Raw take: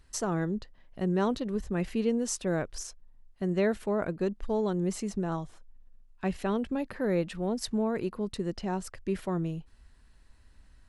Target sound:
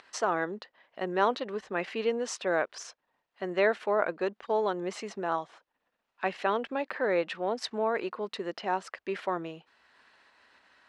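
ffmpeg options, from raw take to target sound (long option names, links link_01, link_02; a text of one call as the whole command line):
ffmpeg -i in.wav -af "acompressor=mode=upward:threshold=-46dB:ratio=2.5,highpass=620,lowpass=3400,volume=8dB" out.wav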